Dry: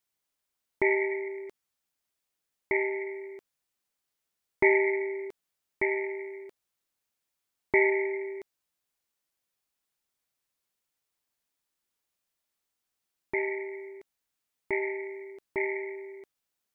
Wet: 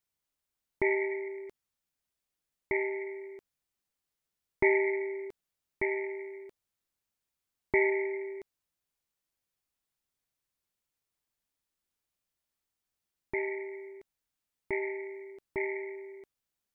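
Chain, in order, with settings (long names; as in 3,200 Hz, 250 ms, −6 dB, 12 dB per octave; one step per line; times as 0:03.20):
low-shelf EQ 170 Hz +9 dB
level −4 dB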